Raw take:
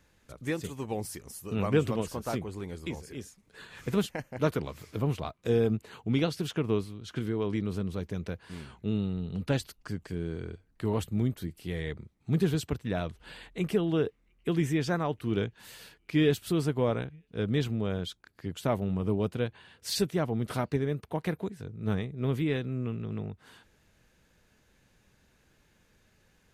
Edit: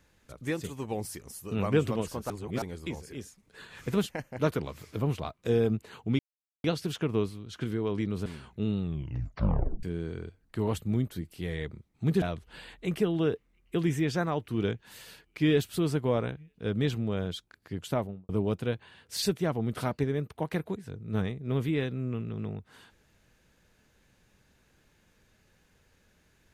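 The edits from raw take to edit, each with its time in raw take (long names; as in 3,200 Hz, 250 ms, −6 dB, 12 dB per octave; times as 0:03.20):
0:02.30–0:02.62: reverse
0:06.19: splice in silence 0.45 s
0:07.81–0:08.52: remove
0:09.07: tape stop 1.02 s
0:12.48–0:12.95: remove
0:18.61–0:19.02: fade out and dull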